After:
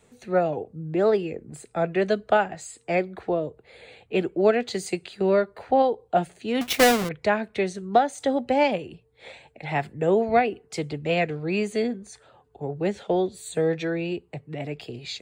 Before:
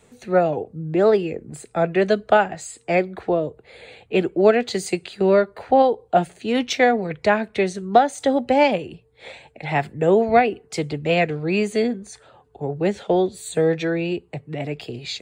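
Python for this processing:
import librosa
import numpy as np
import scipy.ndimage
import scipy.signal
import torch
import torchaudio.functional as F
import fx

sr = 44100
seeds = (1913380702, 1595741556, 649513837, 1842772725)

y = fx.halfwave_hold(x, sr, at=(6.61, 7.09))
y = y * librosa.db_to_amplitude(-4.5)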